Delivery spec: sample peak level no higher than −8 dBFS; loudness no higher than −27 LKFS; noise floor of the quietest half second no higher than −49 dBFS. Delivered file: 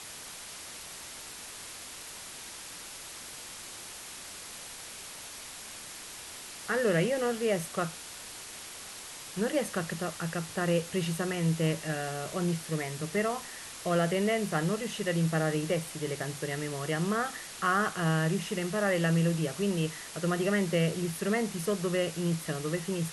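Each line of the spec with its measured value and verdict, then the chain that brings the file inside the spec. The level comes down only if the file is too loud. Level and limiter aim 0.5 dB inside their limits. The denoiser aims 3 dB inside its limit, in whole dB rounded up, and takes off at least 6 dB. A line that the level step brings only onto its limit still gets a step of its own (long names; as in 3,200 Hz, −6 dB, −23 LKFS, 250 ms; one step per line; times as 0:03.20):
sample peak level −16.0 dBFS: in spec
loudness −32.0 LKFS: in spec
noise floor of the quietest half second −44 dBFS: out of spec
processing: broadband denoise 8 dB, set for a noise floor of −44 dBFS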